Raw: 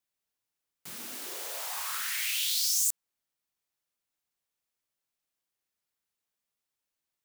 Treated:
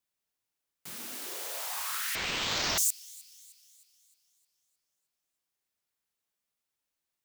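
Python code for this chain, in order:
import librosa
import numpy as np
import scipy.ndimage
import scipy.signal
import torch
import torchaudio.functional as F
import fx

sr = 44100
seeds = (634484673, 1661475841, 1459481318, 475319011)

p1 = x + fx.echo_wet_highpass(x, sr, ms=309, feedback_pct=50, hz=2300.0, wet_db=-22.0, dry=0)
y = fx.resample_linear(p1, sr, factor=4, at=(2.15, 2.78))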